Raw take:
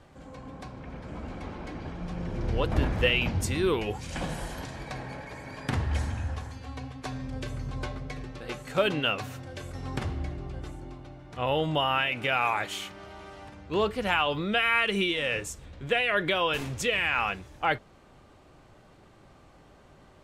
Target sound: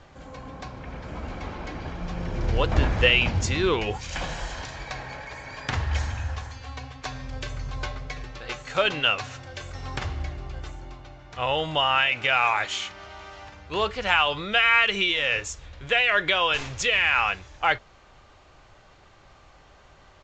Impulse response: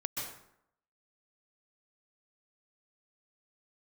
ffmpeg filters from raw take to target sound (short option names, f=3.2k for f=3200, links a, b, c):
-af "asetnsamples=n=441:p=0,asendcmd='3.97 equalizer g -12.5',equalizer=f=230:t=o:w=2.4:g=-6,acrusher=bits=8:mode=log:mix=0:aa=0.000001,aresample=16000,aresample=44100,volume=6.5dB"